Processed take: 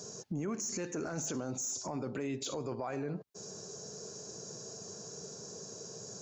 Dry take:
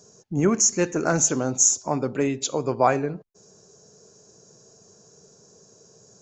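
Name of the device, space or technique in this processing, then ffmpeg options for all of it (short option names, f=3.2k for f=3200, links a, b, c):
broadcast voice chain: -af "highpass=84,deesser=0.5,acompressor=threshold=-37dB:ratio=5,equalizer=f=4.4k:t=o:w=0.67:g=3,alimiter=level_in=11.5dB:limit=-24dB:level=0:latency=1:release=10,volume=-11.5dB,volume=6.5dB"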